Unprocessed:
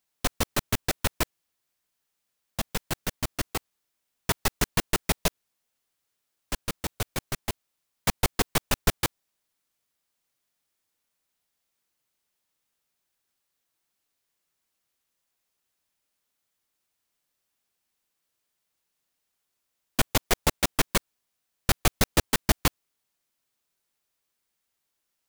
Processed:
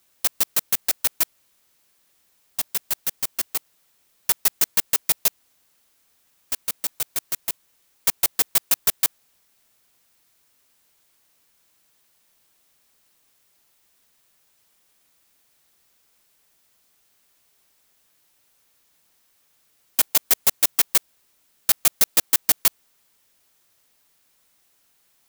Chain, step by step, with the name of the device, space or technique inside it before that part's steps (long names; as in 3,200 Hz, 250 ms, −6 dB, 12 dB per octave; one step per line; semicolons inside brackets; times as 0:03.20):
turntable without a phono preamp (RIAA equalisation recording; white noise bed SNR 37 dB)
level −4.5 dB